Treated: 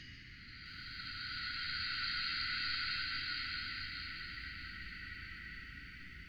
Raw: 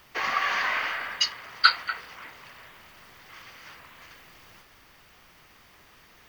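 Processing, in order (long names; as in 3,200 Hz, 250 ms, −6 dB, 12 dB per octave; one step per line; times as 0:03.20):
Chebyshev band-stop filter 300–1,900 Hz, order 3
high-shelf EQ 6,900 Hz −8 dB
extreme stretch with random phases 9.4×, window 0.50 s, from 0:01.41
RIAA equalisation playback
feedback echo at a low word length 657 ms, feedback 35%, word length 11 bits, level −7 dB
level −6.5 dB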